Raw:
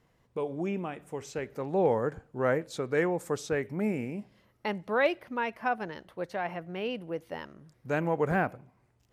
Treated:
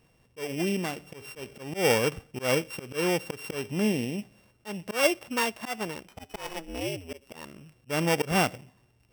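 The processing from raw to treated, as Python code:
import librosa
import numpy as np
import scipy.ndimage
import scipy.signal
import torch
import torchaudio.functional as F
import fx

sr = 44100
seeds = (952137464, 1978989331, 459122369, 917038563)

y = np.r_[np.sort(x[:len(x) // 16 * 16].reshape(-1, 16), axis=1).ravel(), x[len(x) // 16 * 16:]]
y = fx.ring_mod(y, sr, carrier_hz=fx.line((6.06, 340.0), (7.33, 57.0)), at=(6.06, 7.33), fade=0.02)
y = fx.auto_swell(y, sr, attack_ms=158.0)
y = F.gain(torch.from_numpy(y), 4.0).numpy()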